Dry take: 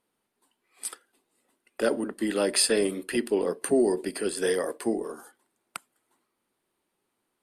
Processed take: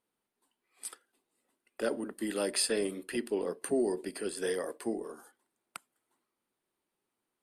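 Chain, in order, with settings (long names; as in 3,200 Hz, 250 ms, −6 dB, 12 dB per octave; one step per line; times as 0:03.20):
0:02.05–0:02.49: high-shelf EQ 12,000 Hz → 7,900 Hz +11.5 dB
level −7 dB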